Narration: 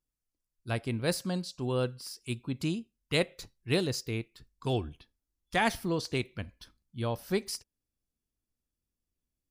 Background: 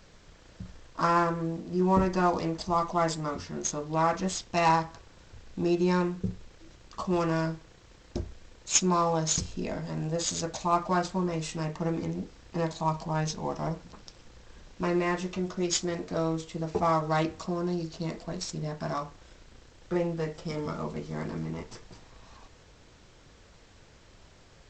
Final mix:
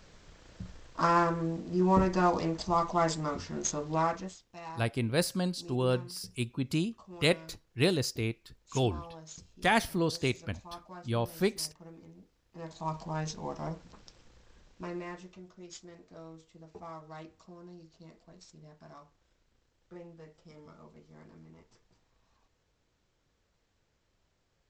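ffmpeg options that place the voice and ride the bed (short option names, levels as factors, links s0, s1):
-filter_complex "[0:a]adelay=4100,volume=1.19[s0];[1:a]volume=5.01,afade=t=out:st=3.92:d=0.45:silence=0.105925,afade=t=in:st=12.52:d=0.44:silence=0.177828,afade=t=out:st=13.98:d=1.48:silence=0.199526[s1];[s0][s1]amix=inputs=2:normalize=0"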